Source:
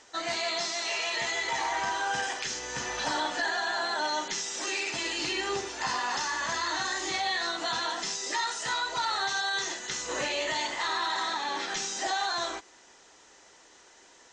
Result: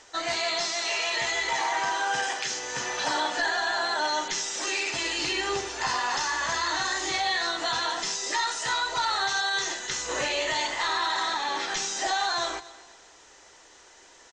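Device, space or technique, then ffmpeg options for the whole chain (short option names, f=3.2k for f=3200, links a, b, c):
low shelf boost with a cut just above: -filter_complex "[0:a]asettb=1/sr,asplit=3[a][b][c];[a]atrim=end=1.534[d];[b]atrim=start=1.53:end=3.37,asetpts=PTS-STARTPTS,afade=t=in:d=0.004:c=qsin,afade=t=out:st=1.836:d=0.004:c=qsin,highpass=140[e];[c]atrim=start=3.366[f];[d][e]acrossfade=d=0.004:c1=hsin:c2=qsin[g];[g][f]acrossfade=d=0.004:c1=qsin:c2=hsin,lowshelf=f=71:g=6,equalizer=f=220:t=o:w=0.94:g=-5,aecho=1:1:241|482|723:0.112|0.0359|0.0115,volume=3dB"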